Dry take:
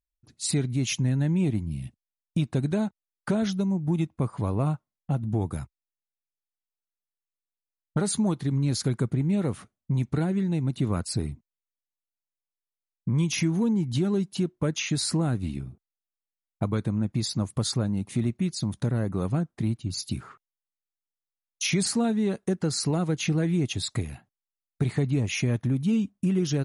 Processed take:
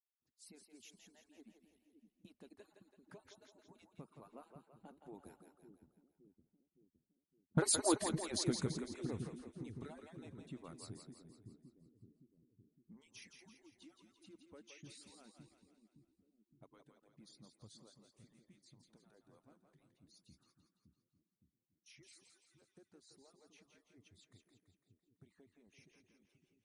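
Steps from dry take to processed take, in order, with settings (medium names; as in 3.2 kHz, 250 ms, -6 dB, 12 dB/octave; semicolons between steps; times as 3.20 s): harmonic-percussive separation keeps percussive; Doppler pass-by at 7.89 s, 17 m/s, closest 4.6 m; two-band feedback delay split 360 Hz, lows 564 ms, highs 168 ms, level -6 dB; trim -1 dB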